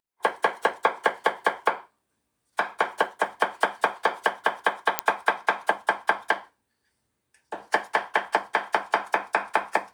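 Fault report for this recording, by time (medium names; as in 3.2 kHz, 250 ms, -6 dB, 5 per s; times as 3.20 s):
4.99 s: pop -2 dBFS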